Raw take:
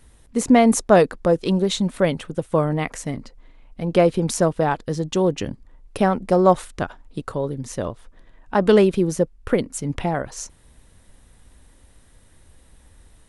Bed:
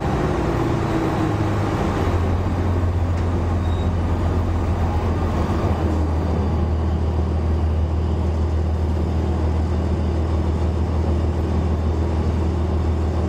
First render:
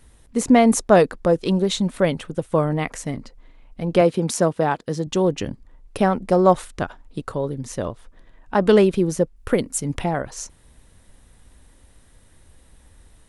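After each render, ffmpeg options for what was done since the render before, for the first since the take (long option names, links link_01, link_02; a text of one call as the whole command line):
ffmpeg -i in.wav -filter_complex "[0:a]asettb=1/sr,asplit=3[link_01][link_02][link_03];[link_01]atrim=end=4.014[link_04];[link_02]atrim=start=4.01:end=5.07,asetpts=PTS-STARTPTS,afade=type=in:duration=0.004:curve=qsin,afade=type=out:start_time=1.056:duration=0.004:curve=qsin,highpass=120[link_05];[link_03]atrim=start=5.066[link_06];[link_04][link_05]acrossfade=duration=0.004:curve1=hsin:curve2=qsin[link_07];[link_07][link_06]acrossfade=duration=0.004:curve1=qsin:curve2=hsin,asettb=1/sr,asplit=3[link_08][link_09][link_10];[link_08]atrim=end=9.364[link_11];[link_09]atrim=start=9.36:end=10.04,asetpts=PTS-STARTPTS,afade=type=in:duration=0.004:curve=qsin,afade=type=out:start_time=0.676:duration=0.004:curve=qsin,highshelf=frequency=8000:gain=10.5[link_12];[link_10]atrim=start=10.036[link_13];[link_11][link_12]acrossfade=duration=0.004:curve1=hsin:curve2=qsin[link_14];[link_14][link_13]acrossfade=duration=0.004:curve1=qsin:curve2=hsin" out.wav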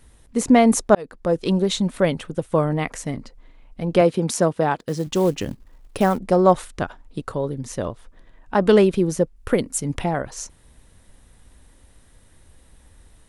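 ffmpeg -i in.wav -filter_complex "[0:a]asplit=3[link_01][link_02][link_03];[link_01]afade=type=out:start_time=4.77:duration=0.02[link_04];[link_02]acrusher=bits=6:mode=log:mix=0:aa=0.000001,afade=type=in:start_time=4.77:duration=0.02,afade=type=out:start_time=6.17:duration=0.02[link_05];[link_03]afade=type=in:start_time=6.17:duration=0.02[link_06];[link_04][link_05][link_06]amix=inputs=3:normalize=0,asplit=2[link_07][link_08];[link_07]atrim=end=0.95,asetpts=PTS-STARTPTS,afade=type=out:start_time=0.946:duration=0.004:curve=hsin[link_09];[link_08]atrim=start=0.95,asetpts=PTS-STARTPTS,afade=type=in:duration=0.49[link_10];[link_09][link_10]concat=n=2:v=0:a=1" out.wav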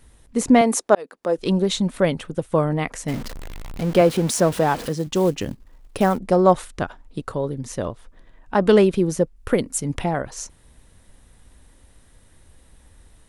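ffmpeg -i in.wav -filter_complex "[0:a]asettb=1/sr,asplit=3[link_01][link_02][link_03];[link_01]atrim=end=0.614[link_04];[link_02]atrim=start=0.61:end=1.38,asetpts=PTS-STARTPTS,afade=type=in:duration=0.004:curve=qsin,afade=type=out:start_time=0.766:duration=0.004:curve=qsin,highpass=310[link_05];[link_03]atrim=start=1.376[link_06];[link_04][link_05]acrossfade=duration=0.004:curve1=hsin:curve2=qsin[link_07];[link_07][link_06]acrossfade=duration=0.004:curve1=qsin:curve2=hsin,asettb=1/sr,asplit=3[link_08][link_09][link_10];[link_08]atrim=end=3.084[link_11];[link_09]atrim=start=3.08:end=4.89,asetpts=PTS-STARTPTS,afade=type=in:duration=0.004:curve=qsin,afade=type=out:start_time=1.806:duration=0.004:curve=qsin,aeval=exprs='val(0)+0.5*0.0398*sgn(val(0))':channel_layout=same[link_12];[link_10]atrim=start=4.886[link_13];[link_11][link_12]acrossfade=duration=0.004:curve1=hsin:curve2=qsin[link_14];[link_14][link_13]acrossfade=duration=0.004:curve1=qsin:curve2=hsin" out.wav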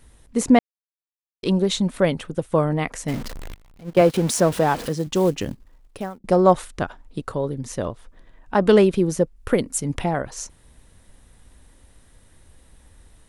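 ffmpeg -i in.wav -filter_complex "[0:a]asettb=1/sr,asplit=3[link_01][link_02][link_03];[link_01]atrim=end=3.544[link_04];[link_02]atrim=start=3.54:end=4.14,asetpts=PTS-STARTPTS,afade=type=in:duration=0.004:curve=qsin,afade=type=out:start_time=0.596:duration=0.004:curve=qsin,agate=range=-18dB:threshold=-20dB:ratio=16:release=100:detection=peak[link_05];[link_03]atrim=start=4.136[link_06];[link_04][link_05]acrossfade=duration=0.004:curve1=hsin:curve2=qsin[link_07];[link_07][link_06]acrossfade=duration=0.004:curve1=qsin:curve2=hsin,asplit=4[link_08][link_09][link_10][link_11];[link_08]atrim=end=0.59,asetpts=PTS-STARTPTS,afade=type=out:start_time=0.586:duration=0.004:curve=hsin[link_12];[link_09]atrim=start=0.59:end=1.43,asetpts=PTS-STARTPTS,volume=0[link_13];[link_10]atrim=start=1.43:end=6.24,asetpts=PTS-STARTPTS,afade=type=in:duration=0.004:curve=hsin,afade=type=out:start_time=4.05:duration=0.76[link_14];[link_11]atrim=start=6.24,asetpts=PTS-STARTPTS,afade=type=in:duration=0.004:curve=hsin[link_15];[link_12][link_13][link_14][link_15]concat=n=4:v=0:a=1" out.wav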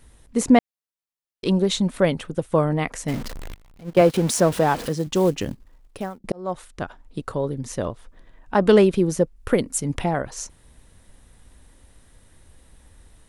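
ffmpeg -i in.wav -filter_complex "[0:a]asplit=2[link_01][link_02];[link_01]atrim=end=6.32,asetpts=PTS-STARTPTS,afade=type=out:start_time=6.316:duration=0.004:curve=hsin[link_03];[link_02]atrim=start=6.32,asetpts=PTS-STARTPTS,afade=type=in:duration=1.22:curve=qsin[link_04];[link_03][link_04]concat=n=2:v=0:a=1" out.wav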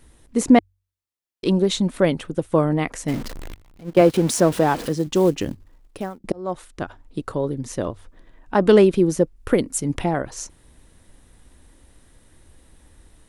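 ffmpeg -i in.wav -af "equalizer=frequency=320:width=2.8:gain=5,bandreject=frequency=46.56:width_type=h:width=4,bandreject=frequency=93.12:width_type=h:width=4" out.wav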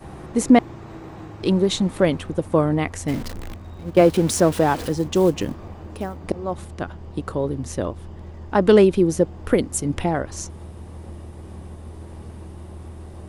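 ffmpeg -i in.wav -i bed.wav -filter_complex "[1:a]volume=-17.5dB[link_01];[0:a][link_01]amix=inputs=2:normalize=0" out.wav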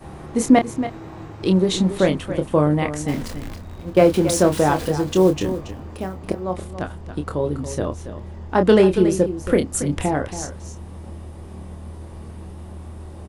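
ffmpeg -i in.wav -filter_complex "[0:a]asplit=2[link_01][link_02];[link_02]adelay=27,volume=-7dB[link_03];[link_01][link_03]amix=inputs=2:normalize=0,aecho=1:1:279:0.266" out.wav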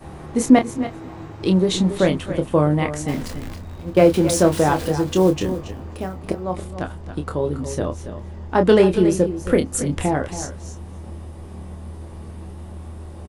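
ffmpeg -i in.wav -filter_complex "[0:a]asplit=2[link_01][link_02];[link_02]adelay=12,volume=-13dB[link_03];[link_01][link_03]amix=inputs=2:normalize=0,aecho=1:1:257:0.0841" out.wav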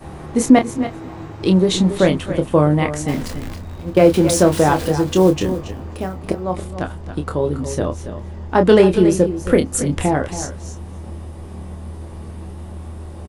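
ffmpeg -i in.wav -af "volume=3dB,alimiter=limit=-1dB:level=0:latency=1" out.wav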